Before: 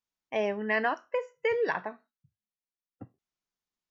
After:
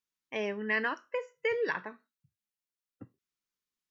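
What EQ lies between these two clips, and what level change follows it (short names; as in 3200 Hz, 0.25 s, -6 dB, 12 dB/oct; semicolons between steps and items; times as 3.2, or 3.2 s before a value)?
low shelf 170 Hz -6 dB; bell 720 Hz -13.5 dB 0.55 oct; 0.0 dB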